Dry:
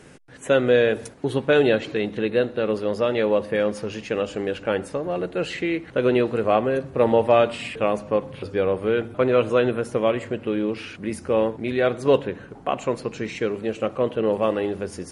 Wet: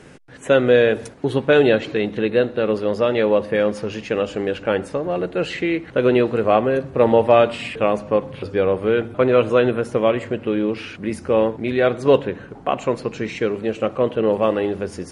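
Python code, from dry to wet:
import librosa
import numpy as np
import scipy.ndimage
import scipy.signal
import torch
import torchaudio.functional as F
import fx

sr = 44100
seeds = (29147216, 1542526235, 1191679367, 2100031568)

y = fx.high_shelf(x, sr, hz=9300.0, db=-10.0)
y = y * 10.0 ** (3.5 / 20.0)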